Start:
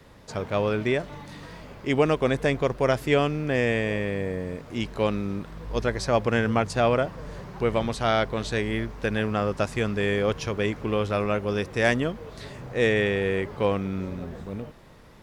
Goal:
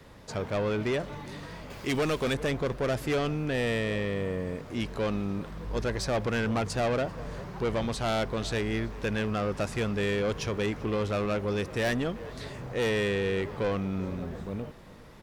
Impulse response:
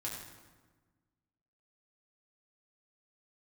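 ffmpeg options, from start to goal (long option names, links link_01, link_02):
-filter_complex "[0:a]asettb=1/sr,asplit=3[link_01][link_02][link_03];[link_01]atrim=end=1.704[link_04];[link_02]atrim=start=1.7:end=2.34,asetpts=PTS-STARTPTS,afade=type=in:duration=0.004:curve=qsin,afade=type=out:start_time=0.636:duration=0.004:curve=qsin,highshelf=frequency=2700:gain=12[link_05];[link_03]atrim=start=2.336[link_06];[link_04][link_05]acrossfade=duration=0.004:curve1=hsin:curve2=qsin[link_07];[link_07][link_06]acrossfade=duration=0.004:curve1=qsin:curve2=hsin,asoftclip=type=tanh:threshold=-23.5dB,asplit=2[link_08][link_09];[link_09]adelay=390.7,volume=-20dB,highshelf=frequency=4000:gain=-8.79[link_10];[link_08][link_10]amix=inputs=2:normalize=0"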